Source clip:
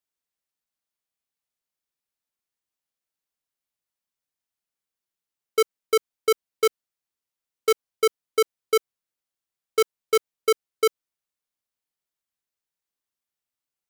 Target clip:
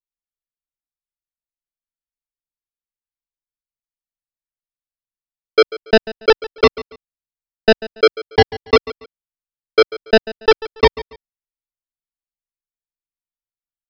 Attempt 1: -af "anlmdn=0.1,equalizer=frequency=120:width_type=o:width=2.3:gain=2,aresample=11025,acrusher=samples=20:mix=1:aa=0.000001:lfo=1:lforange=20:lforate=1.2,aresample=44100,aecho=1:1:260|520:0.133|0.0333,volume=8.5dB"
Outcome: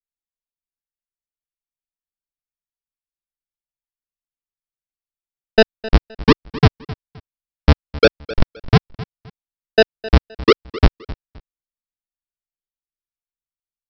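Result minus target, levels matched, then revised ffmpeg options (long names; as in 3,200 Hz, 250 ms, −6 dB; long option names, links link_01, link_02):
echo 119 ms late; sample-and-hold swept by an LFO: distortion +21 dB
-af "anlmdn=0.1,equalizer=frequency=120:width_type=o:width=2.3:gain=2,aresample=11025,acrusher=samples=7:mix=1:aa=0.000001:lfo=1:lforange=7:lforate=1.2,aresample=44100,aecho=1:1:141|282:0.133|0.0333,volume=8.5dB"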